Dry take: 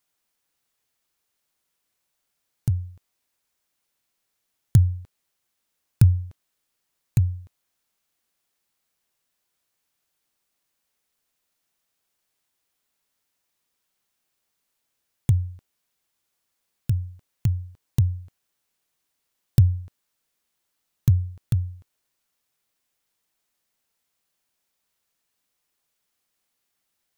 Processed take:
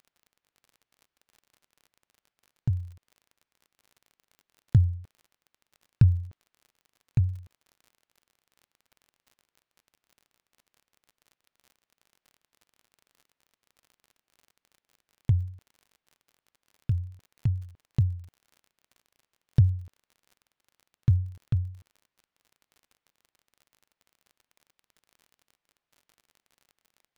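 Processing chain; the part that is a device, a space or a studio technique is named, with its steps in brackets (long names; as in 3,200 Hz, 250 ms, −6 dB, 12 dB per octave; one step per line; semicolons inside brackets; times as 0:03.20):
lo-fi chain (low-pass filter 3,100 Hz 12 dB per octave; tape wow and flutter; surface crackle 40 per second −41 dBFS)
level −3.5 dB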